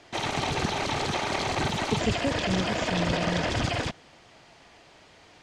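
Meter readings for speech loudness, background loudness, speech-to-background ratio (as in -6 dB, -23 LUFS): -32.0 LUFS, -28.0 LUFS, -4.0 dB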